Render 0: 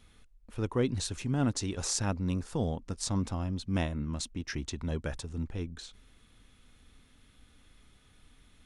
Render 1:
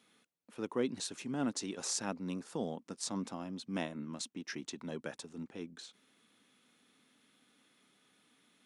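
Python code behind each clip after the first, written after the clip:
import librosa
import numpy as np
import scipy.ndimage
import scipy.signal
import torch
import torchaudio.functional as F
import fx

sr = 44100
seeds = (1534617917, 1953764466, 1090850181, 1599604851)

y = scipy.signal.sosfilt(scipy.signal.butter(4, 190.0, 'highpass', fs=sr, output='sos'), x)
y = y * 10.0 ** (-4.0 / 20.0)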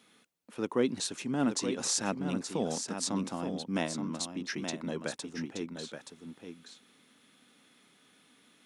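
y = x + 10.0 ** (-7.5 / 20.0) * np.pad(x, (int(875 * sr / 1000.0), 0))[:len(x)]
y = y * 10.0 ** (5.5 / 20.0)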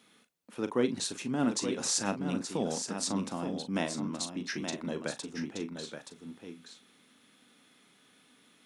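y = fx.doubler(x, sr, ms=40.0, db=-11.0)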